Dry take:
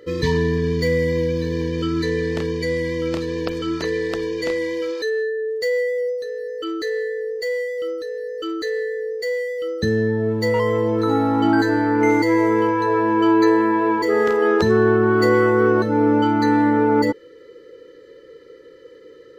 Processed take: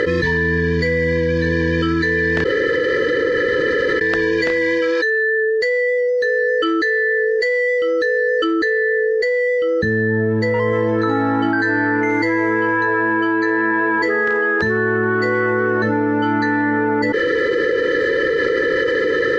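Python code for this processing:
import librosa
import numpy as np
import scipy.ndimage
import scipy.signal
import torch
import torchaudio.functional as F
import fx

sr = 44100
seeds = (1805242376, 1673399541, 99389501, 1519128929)

y = fx.tilt_shelf(x, sr, db=3.0, hz=970.0, at=(8.44, 10.73))
y = fx.edit(y, sr, fx.room_tone_fill(start_s=2.44, length_s=1.57), tone=tone)
y = scipy.signal.sosfilt(scipy.signal.butter(2, 5600.0, 'lowpass', fs=sr, output='sos'), y)
y = fx.peak_eq(y, sr, hz=1700.0, db=14.5, octaves=0.38)
y = fx.env_flatten(y, sr, amount_pct=100)
y = y * 10.0 ** (-6.0 / 20.0)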